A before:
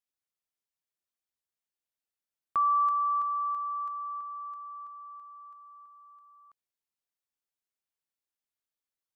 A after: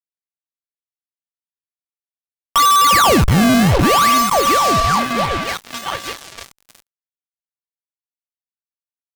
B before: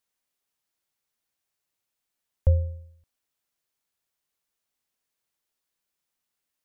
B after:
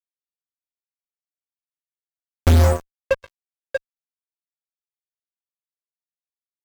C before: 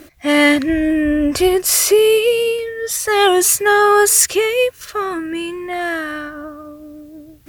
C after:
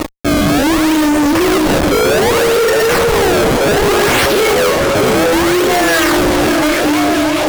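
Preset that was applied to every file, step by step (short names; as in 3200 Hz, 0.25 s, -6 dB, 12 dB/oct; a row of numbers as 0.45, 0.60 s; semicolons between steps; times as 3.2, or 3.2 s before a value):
bell 67 Hz -9 dB 0.92 oct; de-hum 53.07 Hz, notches 25; reverse; compressor 4:1, threshold -27 dBFS; reverse; resonator 330 Hz, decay 0.73 s, mix 50%; decimation with a swept rate 27×, swing 160% 0.64 Hz; resonator 550 Hz, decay 0.43 s, mix 70%; delay with a stepping band-pass 0.637 s, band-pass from 420 Hz, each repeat 0.7 oct, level -2 dB; fuzz box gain 57 dB, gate -59 dBFS; gain +3 dB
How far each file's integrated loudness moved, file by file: +16.5, +7.0, +3.0 LU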